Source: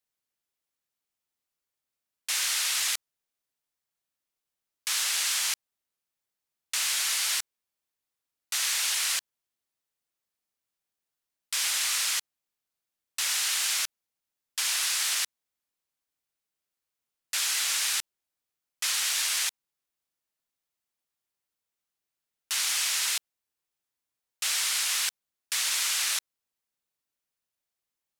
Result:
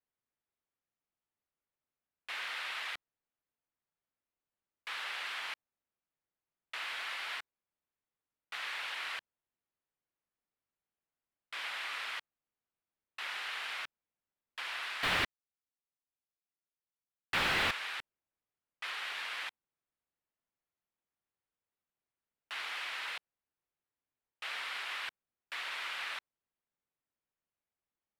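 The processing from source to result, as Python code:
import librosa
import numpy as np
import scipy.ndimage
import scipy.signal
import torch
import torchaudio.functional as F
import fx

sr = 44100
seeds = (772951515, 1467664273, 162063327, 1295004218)

y = fx.leveller(x, sr, passes=5, at=(15.03, 17.71))
y = fx.air_absorb(y, sr, metres=500.0)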